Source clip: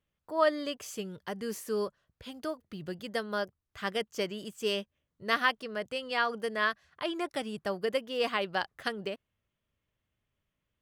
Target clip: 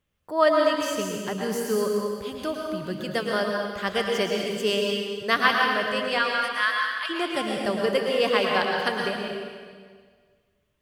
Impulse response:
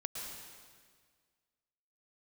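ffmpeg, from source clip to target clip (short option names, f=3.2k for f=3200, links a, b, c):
-filter_complex "[0:a]asplit=3[a][b][c];[a]afade=t=out:st=6.18:d=0.02[d];[b]highpass=f=1.1k:w=0.5412,highpass=f=1.1k:w=1.3066,afade=t=in:st=6.18:d=0.02,afade=t=out:st=7.09:d=0.02[e];[c]afade=t=in:st=7.09:d=0.02[f];[d][e][f]amix=inputs=3:normalize=0[g];[1:a]atrim=start_sample=2205[h];[g][h]afir=irnorm=-1:irlink=0,volume=8.5dB"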